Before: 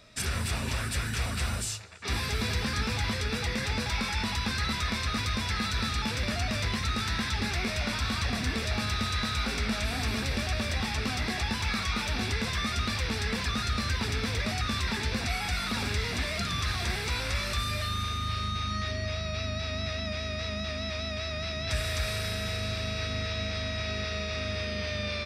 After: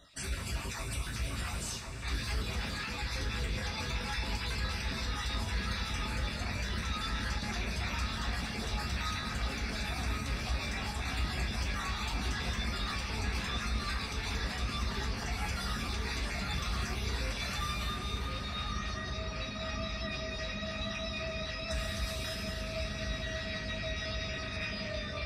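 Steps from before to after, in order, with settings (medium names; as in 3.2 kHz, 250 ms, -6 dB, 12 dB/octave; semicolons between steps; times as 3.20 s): random holes in the spectrogram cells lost 30%; peak limiter -27 dBFS, peak gain reduction 8.5 dB; filtered feedback delay 1072 ms, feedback 79%, low-pass 1.7 kHz, level -4 dB; reverberation, pre-delay 3 ms, DRR -0.5 dB; trim -4.5 dB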